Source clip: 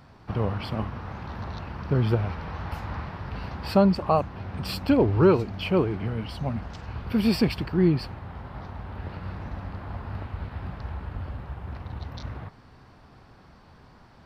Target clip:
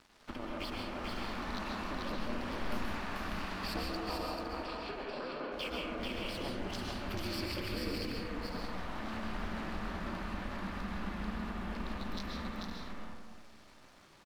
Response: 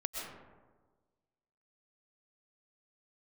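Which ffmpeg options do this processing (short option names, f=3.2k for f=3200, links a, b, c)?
-filter_complex "[0:a]tiltshelf=f=1.3k:g=-6.5,acompressor=threshold=-39dB:ratio=6,aeval=exprs='sgn(val(0))*max(abs(val(0))-0.002,0)':c=same,aeval=exprs='val(0)*sin(2*PI*130*n/s)':c=same,asettb=1/sr,asplit=3[a][b][c];[a]atrim=end=4.474[d];[b]atrim=start=4.47:end=5.52,asetpts=PTS-STARTPTS,afade=t=in:d=0.004:c=qsin,afade=t=out:st=1.046:d=0.004:c=qsin,highpass=350,lowpass=2.7k[e];[c]atrim=start=5.516[f];[d][e]acrossfade=d=0.004:c1=hsin:c2=qsin[g];[g][f]acrossfade=d=0.004:c1=qsin:c2=hsin,aecho=1:1:439|511:0.708|0.299[h];[1:a]atrim=start_sample=2205,asetrate=41013,aresample=44100[i];[h][i]afir=irnorm=-1:irlink=0,volume=4.5dB"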